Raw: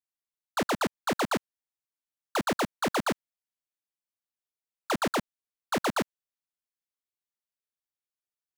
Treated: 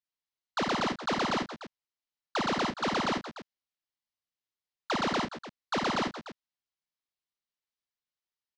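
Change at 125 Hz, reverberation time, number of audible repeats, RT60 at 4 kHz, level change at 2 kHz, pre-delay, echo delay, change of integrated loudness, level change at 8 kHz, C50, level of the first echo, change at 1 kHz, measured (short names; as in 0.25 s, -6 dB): -0.5 dB, none, 4, none, 0.0 dB, none, 53 ms, -0.5 dB, -5.0 dB, none, -3.0 dB, 0.0 dB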